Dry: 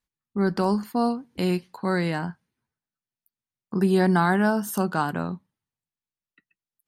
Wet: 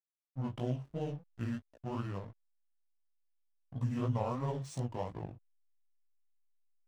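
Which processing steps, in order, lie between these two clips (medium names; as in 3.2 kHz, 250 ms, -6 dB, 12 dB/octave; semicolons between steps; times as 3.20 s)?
rotating-head pitch shifter -7.5 st; hysteresis with a dead band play -32.5 dBFS; chorus 2.9 Hz, delay 15.5 ms, depth 6.6 ms; trim -9 dB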